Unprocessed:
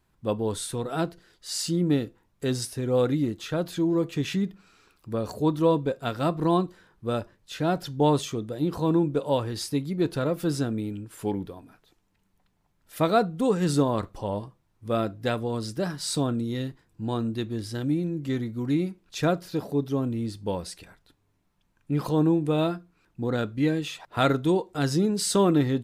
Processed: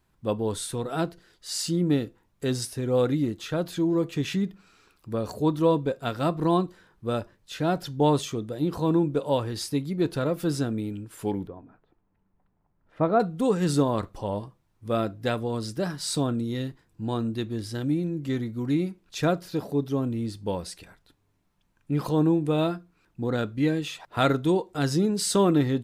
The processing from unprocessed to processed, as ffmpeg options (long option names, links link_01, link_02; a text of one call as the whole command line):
ffmpeg -i in.wav -filter_complex "[0:a]asettb=1/sr,asplit=3[link_01][link_02][link_03];[link_01]atrim=end=11.474[link_04];[link_02]atrim=start=11.47:end=13.2,asetpts=PTS-STARTPTS,afade=type=in:duration=0.004:curve=qsin,afade=type=out:start_time=1.726:duration=0.004:curve=qsin,lowpass=1300[link_05];[link_03]atrim=start=13.196[link_06];[link_04][link_05]acrossfade=duration=0.004:curve1=hsin:curve2=qsin[link_07];[link_07][link_06]acrossfade=duration=0.004:curve1=qsin:curve2=hsin" out.wav